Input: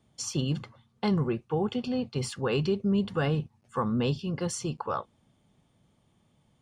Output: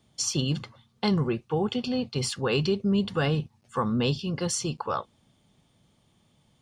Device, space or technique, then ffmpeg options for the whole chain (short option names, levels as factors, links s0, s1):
presence and air boost: -af "equalizer=f=4300:t=o:w=1.5:g=6,highshelf=f=9100:g=4,volume=1.19"